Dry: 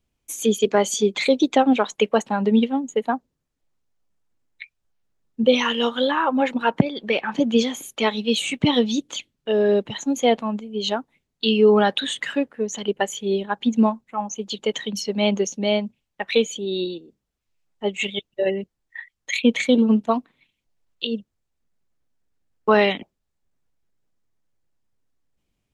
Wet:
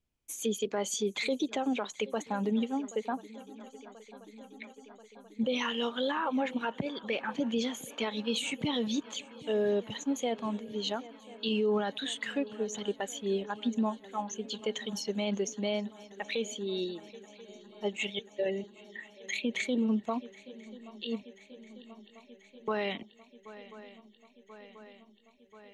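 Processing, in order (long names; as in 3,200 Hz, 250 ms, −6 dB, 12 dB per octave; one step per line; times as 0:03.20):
feedback echo with a long and a short gap by turns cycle 1,035 ms, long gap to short 3 to 1, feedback 71%, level −24 dB
brickwall limiter −13.5 dBFS, peak gain reduction 10 dB
level −8.5 dB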